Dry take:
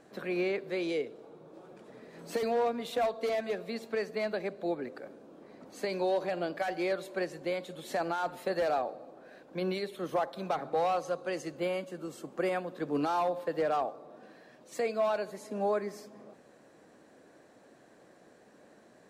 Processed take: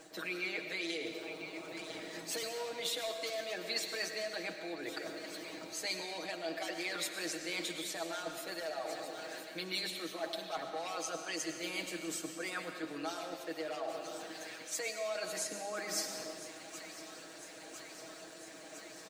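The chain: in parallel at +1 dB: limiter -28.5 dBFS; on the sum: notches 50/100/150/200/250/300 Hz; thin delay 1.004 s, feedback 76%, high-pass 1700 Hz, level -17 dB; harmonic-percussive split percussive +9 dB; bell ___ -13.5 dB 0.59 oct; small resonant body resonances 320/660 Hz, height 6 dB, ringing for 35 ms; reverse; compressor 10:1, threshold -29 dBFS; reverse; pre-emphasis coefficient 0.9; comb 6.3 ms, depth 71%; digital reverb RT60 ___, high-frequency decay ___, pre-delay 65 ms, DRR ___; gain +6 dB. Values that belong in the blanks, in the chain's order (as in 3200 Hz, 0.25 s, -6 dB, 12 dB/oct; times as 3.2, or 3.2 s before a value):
12000 Hz, 1.8 s, 0.9×, 5.5 dB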